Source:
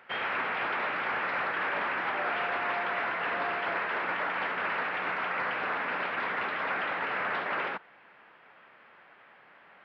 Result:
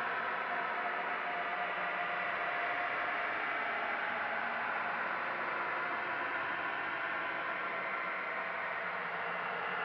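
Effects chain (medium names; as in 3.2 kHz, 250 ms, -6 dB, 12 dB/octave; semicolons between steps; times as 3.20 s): Paulstretch 31×, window 0.10 s, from 2.90 s; trim -5 dB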